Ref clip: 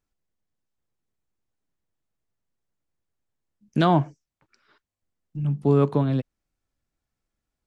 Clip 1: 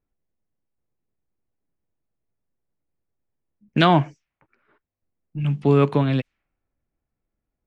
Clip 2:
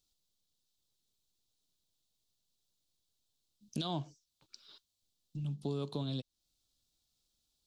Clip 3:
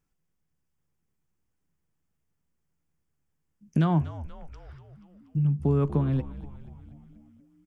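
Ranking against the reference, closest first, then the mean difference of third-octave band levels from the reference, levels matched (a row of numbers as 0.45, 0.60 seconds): 1, 3, 2; 2.0, 3.5, 5.5 decibels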